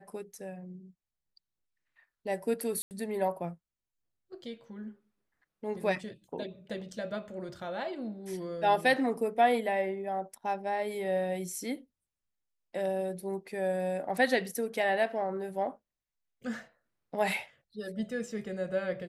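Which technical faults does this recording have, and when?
2.82–2.91 gap 89 ms

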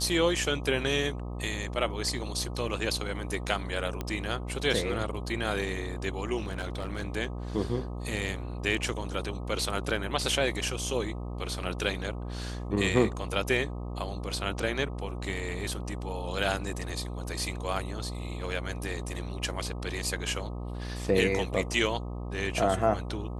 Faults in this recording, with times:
buzz 60 Hz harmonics 21 -36 dBFS
4.01 pop -18 dBFS
6.37–7.05 clipped -28.5 dBFS

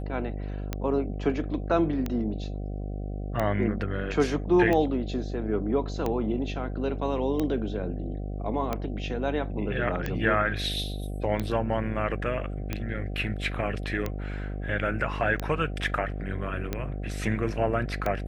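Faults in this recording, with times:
buzz 50 Hz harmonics 15 -33 dBFS
tick 45 rpm -15 dBFS

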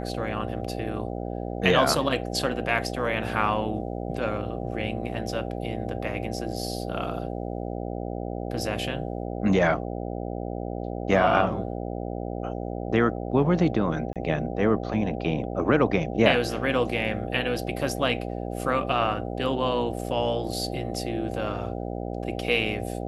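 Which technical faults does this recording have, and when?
buzz 60 Hz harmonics 13 -32 dBFS
14.13–14.16 gap 27 ms

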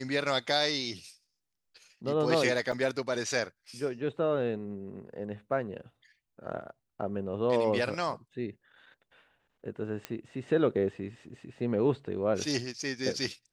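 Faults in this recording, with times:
2.72–2.73 gap 5.3 ms
10.05 pop -19 dBFS

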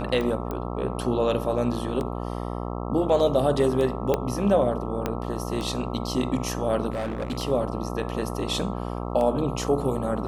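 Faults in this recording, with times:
buzz 60 Hz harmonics 22 -31 dBFS
tick 33 1/3 rpm -18 dBFS
0.51 pop -18 dBFS
4.14 pop -10 dBFS
5.06 pop -12 dBFS
6.9–7.38 clipped -25 dBFS

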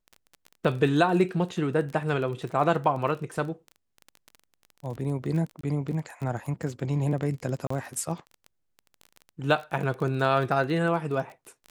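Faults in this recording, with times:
crackle 24/s -33 dBFS
5.61–5.63 gap 24 ms
7.67–7.7 gap 34 ms

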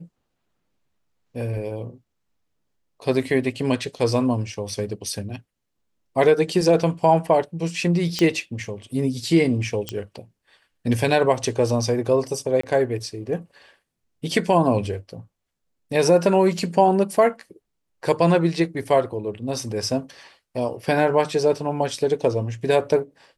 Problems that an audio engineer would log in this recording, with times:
8.19 pop -9 dBFS
9.89 pop -11 dBFS
12.61–12.63 gap 24 ms

